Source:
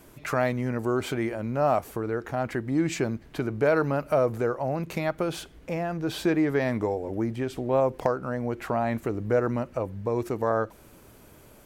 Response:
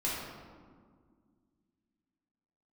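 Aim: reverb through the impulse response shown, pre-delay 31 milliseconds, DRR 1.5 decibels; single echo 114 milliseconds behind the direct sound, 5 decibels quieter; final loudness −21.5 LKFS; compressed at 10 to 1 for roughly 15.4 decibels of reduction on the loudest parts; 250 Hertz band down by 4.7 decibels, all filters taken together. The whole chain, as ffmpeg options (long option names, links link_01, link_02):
-filter_complex "[0:a]equalizer=frequency=250:width_type=o:gain=-6.5,acompressor=threshold=-35dB:ratio=10,aecho=1:1:114:0.562,asplit=2[link_01][link_02];[1:a]atrim=start_sample=2205,adelay=31[link_03];[link_02][link_03]afir=irnorm=-1:irlink=0,volume=-8dB[link_04];[link_01][link_04]amix=inputs=2:normalize=0,volume=14.5dB"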